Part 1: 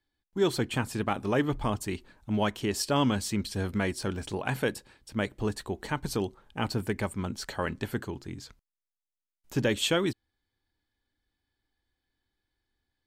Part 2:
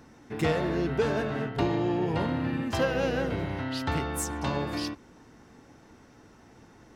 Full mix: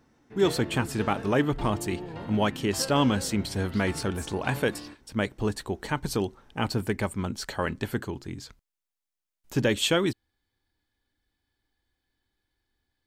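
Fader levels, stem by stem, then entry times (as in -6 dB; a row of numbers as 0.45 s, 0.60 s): +2.5 dB, -10.5 dB; 0.00 s, 0.00 s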